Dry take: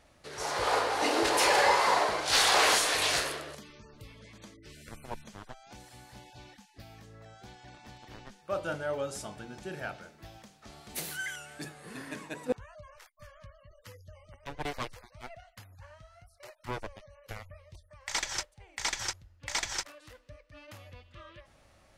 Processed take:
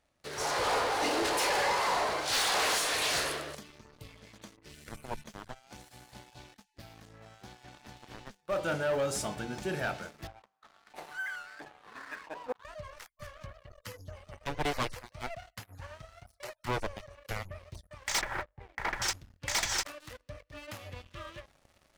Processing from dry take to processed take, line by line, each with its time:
0:10.27–0:12.65: auto-filter band-pass saw up 1.5 Hz 790–1,600 Hz
0:18.21–0:19.02: low-pass filter 1,900 Hz 24 dB per octave
whole clip: mains-hum notches 50/100 Hz; speech leveller within 4 dB 0.5 s; leveller curve on the samples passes 3; level −8.5 dB

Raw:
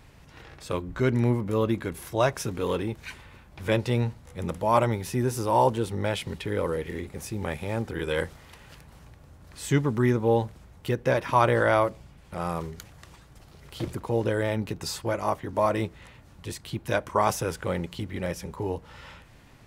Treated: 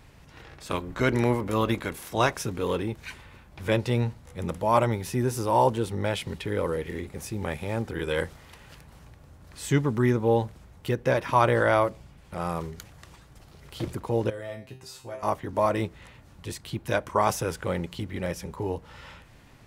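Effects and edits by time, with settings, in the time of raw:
0:00.65–0:02.35: ceiling on every frequency bin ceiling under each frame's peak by 12 dB
0:14.30–0:15.23: tuned comb filter 130 Hz, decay 0.35 s, mix 90%

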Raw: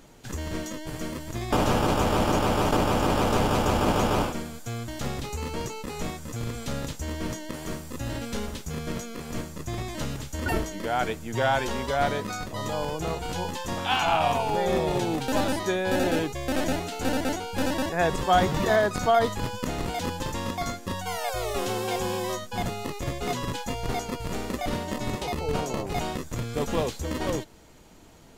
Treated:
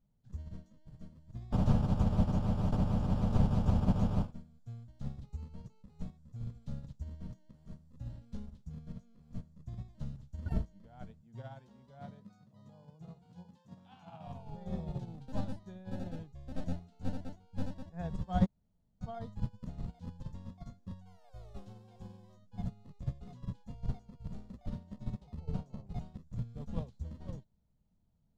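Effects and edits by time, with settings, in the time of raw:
0:11.21–0:14.27: high-pass filter 120 Hz 24 dB per octave
0:18.46–0:19.01: fill with room tone
whole clip: drawn EQ curve 200 Hz 0 dB, 320 Hz −19 dB, 630 Hz −14 dB, 2,400 Hz −24 dB, 4,100 Hz −18 dB, 14,000 Hz −30 dB; expander for the loud parts 2.5 to 1, over −39 dBFS; level +3.5 dB

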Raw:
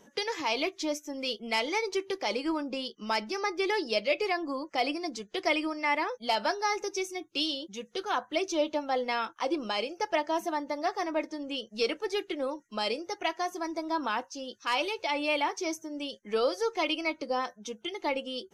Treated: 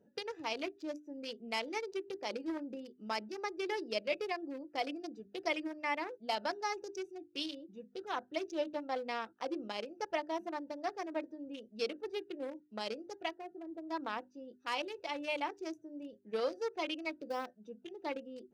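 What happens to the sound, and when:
0:13.34–0:13.89: head-to-tape spacing loss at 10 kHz 40 dB
0:17.11–0:17.57: one scale factor per block 5 bits
whole clip: adaptive Wiener filter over 41 samples; high-pass filter 61 Hz; mains-hum notches 50/100/150/200/250/300/350/400 Hz; level −6 dB

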